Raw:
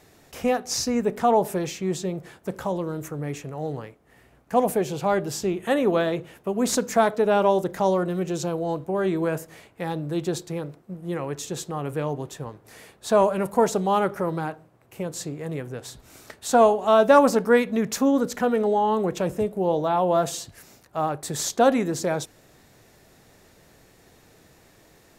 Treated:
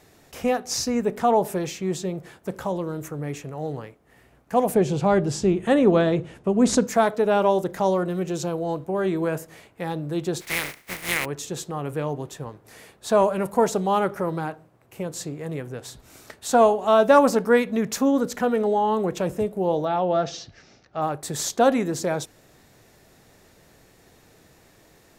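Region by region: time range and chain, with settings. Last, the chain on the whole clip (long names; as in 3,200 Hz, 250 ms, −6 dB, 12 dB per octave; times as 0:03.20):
0:04.74–0:06.87: low-pass filter 9,500 Hz 24 dB per octave + low-shelf EQ 330 Hz +9.5 dB
0:10.40–0:11.24: compressing power law on the bin magnitudes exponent 0.3 + parametric band 2,100 Hz +13 dB 0.57 octaves + notch filter 7,600 Hz, Q 27
0:19.85–0:21.02: elliptic low-pass filter 5,800 Hz, stop band 60 dB + notch filter 1,000 Hz, Q 6.7
whole clip: no processing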